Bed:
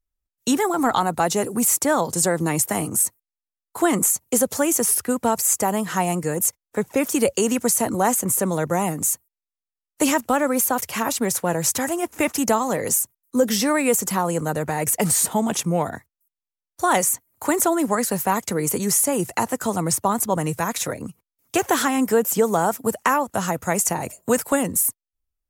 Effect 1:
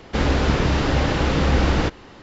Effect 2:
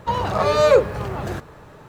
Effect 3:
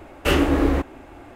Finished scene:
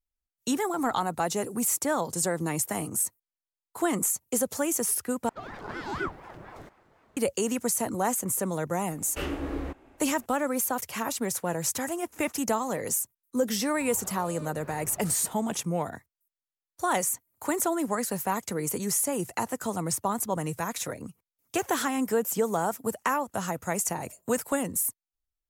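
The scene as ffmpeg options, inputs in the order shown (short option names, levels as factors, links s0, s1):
-filter_complex "[2:a]asplit=2[s0][s1];[0:a]volume=0.422[s2];[s0]aeval=exprs='val(0)*sin(2*PI*570*n/s+570*0.65/4.1*sin(2*PI*4.1*n/s))':c=same[s3];[s1]acompressor=threshold=0.0501:ratio=6:attack=3.2:release=140:knee=1:detection=peak[s4];[s2]asplit=2[s5][s6];[s5]atrim=end=5.294[s7];[s3]atrim=end=1.88,asetpts=PTS-STARTPTS,volume=0.168[s8];[s6]atrim=start=7.166[s9];[3:a]atrim=end=1.35,asetpts=PTS-STARTPTS,volume=0.2,afade=t=in:d=0.004:c=hsin,afade=t=out:st=1.346:d=0.004:c=hsin,adelay=8910[s10];[s4]atrim=end=1.88,asetpts=PTS-STARTPTS,volume=0.141,afade=t=in:d=0.004:c=hsin,afade=t=out:st=1.876:d=0.004:c=hsin,adelay=13740[s11];[s7][s8]acrossfade=d=0.004:c1=hsin:c2=hsin[s12];[s12][s9]acrossfade=d=0.004:c1=hsin:c2=hsin[s13];[s13][s10][s11]amix=inputs=3:normalize=0"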